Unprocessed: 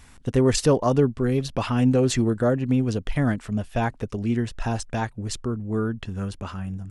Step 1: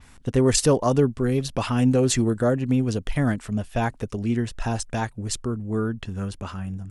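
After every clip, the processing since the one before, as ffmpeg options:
-af "adynamicequalizer=threshold=0.00355:dfrequency=9600:dqfactor=0.72:tfrequency=9600:tqfactor=0.72:attack=5:release=100:ratio=0.375:range=3.5:mode=boostabove:tftype=bell"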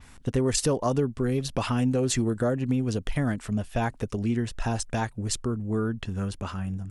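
-af "acompressor=threshold=0.0708:ratio=2.5"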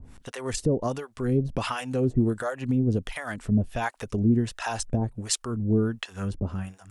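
-filter_complex "[0:a]alimiter=limit=0.133:level=0:latency=1:release=261,acrossover=split=610[s0][s1];[s0]aeval=exprs='val(0)*(1-1/2+1/2*cos(2*PI*1.4*n/s))':c=same[s2];[s1]aeval=exprs='val(0)*(1-1/2-1/2*cos(2*PI*1.4*n/s))':c=same[s3];[s2][s3]amix=inputs=2:normalize=0,volume=2"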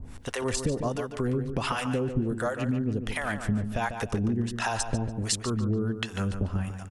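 -filter_complex "[0:a]acompressor=threshold=0.0316:ratio=6,asplit=2[s0][s1];[s1]adelay=145,lowpass=f=4100:p=1,volume=0.398,asplit=2[s2][s3];[s3]adelay=145,lowpass=f=4100:p=1,volume=0.38,asplit=2[s4][s5];[s5]adelay=145,lowpass=f=4100:p=1,volume=0.38,asplit=2[s6][s7];[s7]adelay=145,lowpass=f=4100:p=1,volume=0.38[s8];[s0][s2][s4][s6][s8]amix=inputs=5:normalize=0,volume=1.78"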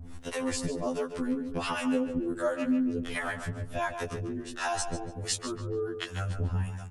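-af "afftfilt=real='re*2*eq(mod(b,4),0)':imag='im*2*eq(mod(b,4),0)':win_size=2048:overlap=0.75"

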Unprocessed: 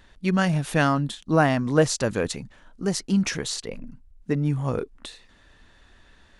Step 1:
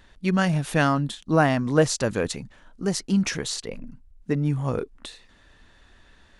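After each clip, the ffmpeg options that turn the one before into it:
-af anull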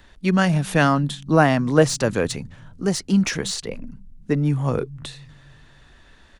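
-filter_complex "[0:a]acrossover=split=150|820|3500[s0][s1][s2][s3];[s0]aecho=1:1:275|550|825|1100|1375:0.282|0.13|0.0596|0.0274|0.0126[s4];[s3]asoftclip=type=tanh:threshold=0.0708[s5];[s4][s1][s2][s5]amix=inputs=4:normalize=0,volume=1.5"

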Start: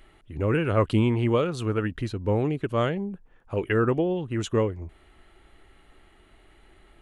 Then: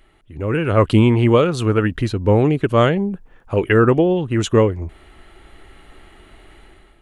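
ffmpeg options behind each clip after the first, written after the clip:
-af "dynaudnorm=f=440:g=3:m=3.55"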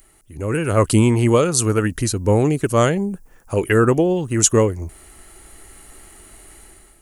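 -af "aexciter=amount=10.8:drive=3.7:freq=5100,volume=0.841"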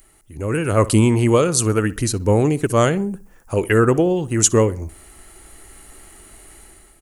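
-filter_complex "[0:a]asplit=2[s0][s1];[s1]adelay=63,lowpass=f=3100:p=1,volume=0.119,asplit=2[s2][s3];[s3]adelay=63,lowpass=f=3100:p=1,volume=0.4,asplit=2[s4][s5];[s5]adelay=63,lowpass=f=3100:p=1,volume=0.4[s6];[s0][s2][s4][s6]amix=inputs=4:normalize=0"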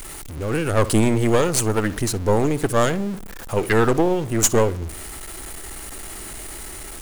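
-af "aeval=exprs='val(0)+0.5*0.0501*sgn(val(0))':c=same,aeval=exprs='0.944*(cos(1*acos(clip(val(0)/0.944,-1,1)))-cos(1*PI/2))+0.15*(cos(6*acos(clip(val(0)/0.944,-1,1)))-cos(6*PI/2))':c=same,volume=0.631"

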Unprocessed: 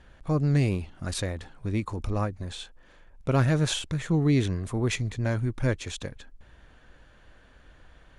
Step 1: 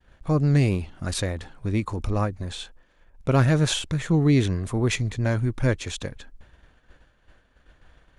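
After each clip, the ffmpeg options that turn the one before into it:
-af "agate=range=0.0224:threshold=0.00501:ratio=3:detection=peak,volume=1.5"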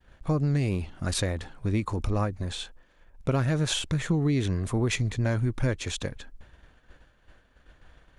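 -af "acompressor=threshold=0.0891:ratio=10"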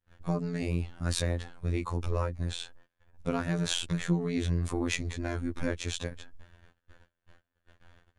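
-af "agate=range=0.1:threshold=0.00224:ratio=16:detection=peak,aeval=exprs='0.211*(cos(1*acos(clip(val(0)/0.211,-1,1)))-cos(1*PI/2))+0.00422*(cos(5*acos(clip(val(0)/0.211,-1,1)))-cos(5*PI/2))':c=same,afftfilt=real='hypot(re,im)*cos(PI*b)':imag='0':win_size=2048:overlap=0.75"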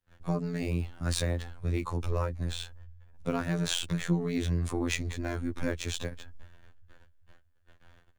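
-filter_complex "[0:a]acrossover=split=100|1900[s0][s1][s2];[s0]aecho=1:1:397|794|1191|1588:0.224|0.101|0.0453|0.0204[s3];[s2]acrusher=bits=3:mode=log:mix=0:aa=0.000001[s4];[s3][s1][s4]amix=inputs=3:normalize=0"

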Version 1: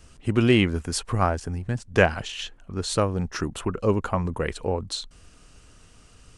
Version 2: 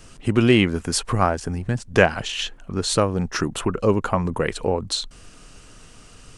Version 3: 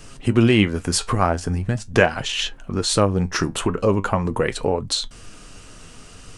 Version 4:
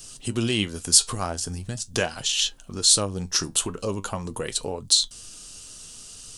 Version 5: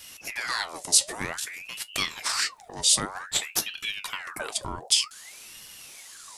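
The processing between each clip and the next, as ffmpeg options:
-filter_complex "[0:a]asplit=2[s0][s1];[s1]acompressor=threshold=0.0355:ratio=6,volume=0.944[s2];[s0][s2]amix=inputs=2:normalize=0,equalizer=f=67:t=o:w=0.54:g=-13.5,volume=1.19"
-filter_complex "[0:a]flanger=delay=6.7:depth=5.7:regen=65:speed=0.42:shape=triangular,asplit=2[s0][s1];[s1]acompressor=threshold=0.0398:ratio=6,volume=1[s2];[s0][s2]amix=inputs=2:normalize=0,volume=1.26"
-af "aexciter=amount=7.7:drive=1.2:freq=3100,volume=0.316"
-filter_complex "[0:a]acrossover=split=310|2900[s0][s1][s2];[s0]asoftclip=type=hard:threshold=0.015[s3];[s3][s1][s2]amix=inputs=3:normalize=0,aeval=exprs='val(0)*sin(2*PI*1700*n/s+1700*0.7/0.53*sin(2*PI*0.53*n/s))':c=same"

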